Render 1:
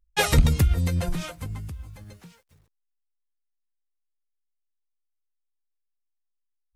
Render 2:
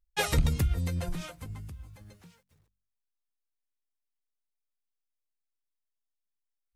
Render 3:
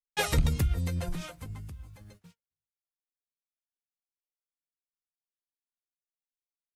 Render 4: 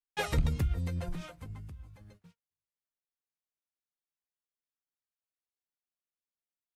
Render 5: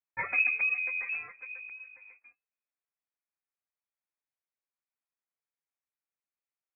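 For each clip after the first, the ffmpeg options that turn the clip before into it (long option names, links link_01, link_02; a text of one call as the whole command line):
ffmpeg -i in.wav -af "bandreject=frequency=47.2:width_type=h:width=4,bandreject=frequency=94.4:width_type=h:width=4,bandreject=frequency=141.6:width_type=h:width=4,bandreject=frequency=188.8:width_type=h:width=4,bandreject=frequency=236:width_type=h:width=4,volume=-6.5dB" out.wav
ffmpeg -i in.wav -af "agate=range=-35dB:threshold=-54dB:ratio=16:detection=peak" out.wav
ffmpeg -i in.wav -af "highshelf=frequency=4200:gain=-8.5,volume=-3dB" out.wav
ffmpeg -i in.wav -af "lowpass=frequency=2200:width_type=q:width=0.5098,lowpass=frequency=2200:width_type=q:width=0.6013,lowpass=frequency=2200:width_type=q:width=0.9,lowpass=frequency=2200:width_type=q:width=2.563,afreqshift=-2600" out.wav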